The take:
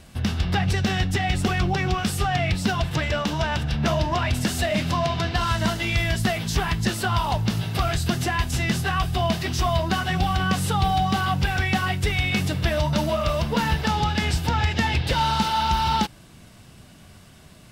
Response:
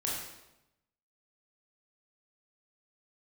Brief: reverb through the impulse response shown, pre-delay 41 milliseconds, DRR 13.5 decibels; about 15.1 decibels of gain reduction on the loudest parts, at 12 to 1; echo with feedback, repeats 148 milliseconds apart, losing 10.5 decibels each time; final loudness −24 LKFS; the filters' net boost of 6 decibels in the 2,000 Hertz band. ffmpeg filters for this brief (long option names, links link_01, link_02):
-filter_complex "[0:a]equalizer=frequency=2000:width_type=o:gain=7.5,acompressor=threshold=-32dB:ratio=12,aecho=1:1:148|296|444:0.299|0.0896|0.0269,asplit=2[link_01][link_02];[1:a]atrim=start_sample=2205,adelay=41[link_03];[link_02][link_03]afir=irnorm=-1:irlink=0,volume=-18.5dB[link_04];[link_01][link_04]amix=inputs=2:normalize=0,volume=10.5dB"